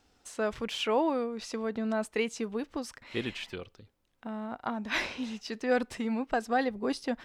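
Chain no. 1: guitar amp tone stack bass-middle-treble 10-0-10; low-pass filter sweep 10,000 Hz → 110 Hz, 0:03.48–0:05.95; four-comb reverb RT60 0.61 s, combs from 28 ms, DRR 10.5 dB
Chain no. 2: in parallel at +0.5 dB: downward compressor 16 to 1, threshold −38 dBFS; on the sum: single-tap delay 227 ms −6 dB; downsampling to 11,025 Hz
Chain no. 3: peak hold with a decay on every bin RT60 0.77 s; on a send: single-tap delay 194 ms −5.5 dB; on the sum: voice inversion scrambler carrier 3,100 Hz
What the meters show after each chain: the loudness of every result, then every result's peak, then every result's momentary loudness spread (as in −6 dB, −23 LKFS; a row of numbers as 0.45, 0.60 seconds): −41.5, −29.5, −26.5 LKFS; −23.5, −13.5, −12.0 dBFS; 21, 9, 12 LU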